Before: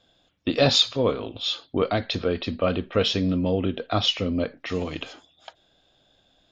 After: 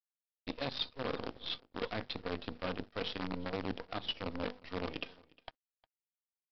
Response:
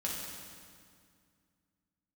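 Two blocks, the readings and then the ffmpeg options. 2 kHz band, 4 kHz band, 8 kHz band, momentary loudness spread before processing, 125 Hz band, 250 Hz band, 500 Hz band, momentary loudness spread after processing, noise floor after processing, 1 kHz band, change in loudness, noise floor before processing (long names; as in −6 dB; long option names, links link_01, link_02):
−10.5 dB, −16.0 dB, can't be measured, 11 LU, −17.5 dB, −15.5 dB, −16.0 dB, 9 LU, below −85 dBFS, −11.5 dB, −15.5 dB, −65 dBFS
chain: -af "afftdn=noise_reduction=12:noise_floor=-36,highpass=47,bandreject=frequency=50:width_type=h:width=6,bandreject=frequency=100:width_type=h:width=6,bandreject=frequency=150:width_type=h:width=6,bandreject=frequency=200:width_type=h:width=6,bandreject=frequency=250:width_type=h:width=6,bandreject=frequency=300:width_type=h:width=6,bandreject=frequency=350:width_type=h:width=6,bandreject=frequency=400:width_type=h:width=6,bandreject=frequency=450:width_type=h:width=6,bandreject=frequency=500:width_type=h:width=6,aecho=1:1:4.1:0.32,areverse,acompressor=threshold=-34dB:ratio=6,areverse,acrusher=bits=6:dc=4:mix=0:aa=0.000001,aresample=11025,aeval=exprs='sgn(val(0))*max(abs(val(0))-0.0015,0)':channel_layout=same,aresample=44100,aecho=1:1:357:0.0631,volume=-2dB"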